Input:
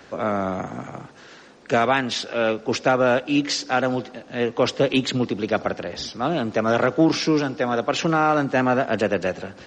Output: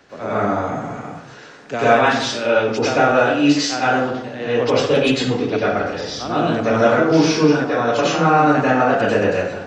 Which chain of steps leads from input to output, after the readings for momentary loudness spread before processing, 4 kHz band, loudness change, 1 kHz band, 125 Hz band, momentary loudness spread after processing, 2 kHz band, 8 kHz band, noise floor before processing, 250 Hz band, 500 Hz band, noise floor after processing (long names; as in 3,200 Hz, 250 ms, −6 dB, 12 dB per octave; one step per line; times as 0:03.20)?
9 LU, +3.0 dB, +5.0 dB, +6.0 dB, +5.0 dB, 10 LU, +5.5 dB, +4.5 dB, −47 dBFS, +4.5 dB, +5.0 dB, −39 dBFS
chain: dense smooth reverb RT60 0.74 s, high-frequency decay 0.6×, pre-delay 85 ms, DRR −10 dB
level −5.5 dB